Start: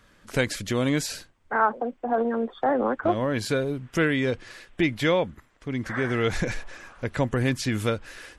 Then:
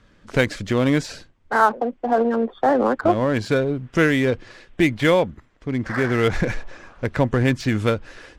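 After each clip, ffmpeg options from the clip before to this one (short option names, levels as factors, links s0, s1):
-filter_complex "[0:a]lowpass=6200,asplit=2[s0][s1];[s1]adynamicsmooth=sensitivity=6:basefreq=600,volume=0.891[s2];[s0][s2]amix=inputs=2:normalize=0"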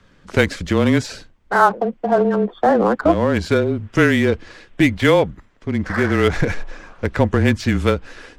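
-af "afreqshift=-25,volume=1.41"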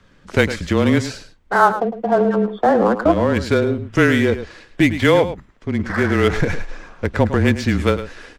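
-af "aecho=1:1:107:0.251"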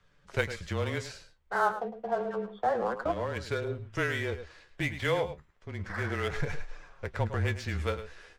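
-af "equalizer=f=260:t=o:w=0.65:g=-13.5,flanger=delay=6.7:depth=7.6:regen=52:speed=0.3:shape=sinusoidal,volume=0.376"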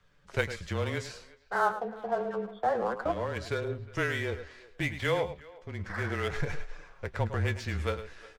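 -filter_complex "[0:a]asplit=2[s0][s1];[s1]adelay=360,highpass=300,lowpass=3400,asoftclip=type=hard:threshold=0.075,volume=0.0891[s2];[s0][s2]amix=inputs=2:normalize=0"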